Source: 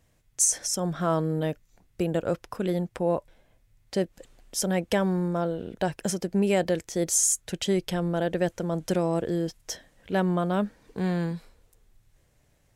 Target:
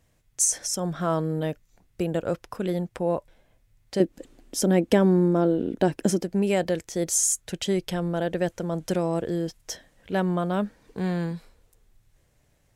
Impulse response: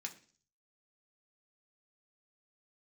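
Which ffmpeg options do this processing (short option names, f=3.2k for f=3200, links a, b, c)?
-filter_complex "[0:a]asettb=1/sr,asplit=3[a][b][c];[a]atrim=end=4.004[d];[b]atrim=start=4:end=6.23,asetpts=PTS-STARTPTS,afade=t=in:d=0.004:c=qsin,afade=t=out:st=2.226:d=0.004:c=qsin,equalizer=f=290:w=1.4:g=14[e];[c]atrim=start=6.226[f];[d][e]acrossfade=d=0.004:c1=hsin:c2=qsin[g];[g][f]acrossfade=d=0.004:c1=qsin:c2=hsin"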